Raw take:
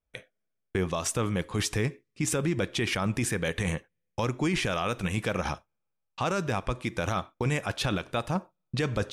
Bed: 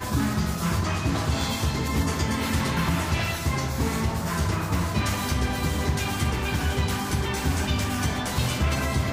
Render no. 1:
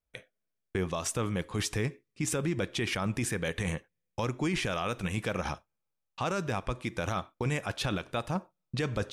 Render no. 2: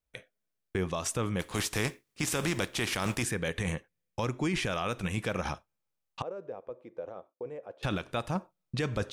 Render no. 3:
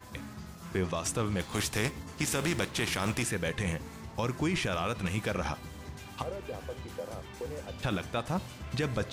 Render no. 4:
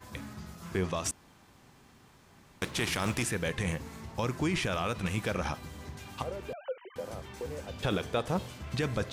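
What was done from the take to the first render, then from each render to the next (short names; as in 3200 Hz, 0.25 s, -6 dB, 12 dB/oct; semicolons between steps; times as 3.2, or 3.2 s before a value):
gain -3 dB
1.39–3.22 spectral contrast lowered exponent 0.62; 6.22–7.83 band-pass 500 Hz, Q 4
add bed -19 dB
1.11–2.62 room tone; 6.53–6.96 sine-wave speech; 7.82–8.51 small resonant body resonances 450/3300 Hz, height 9 dB, ringing for 25 ms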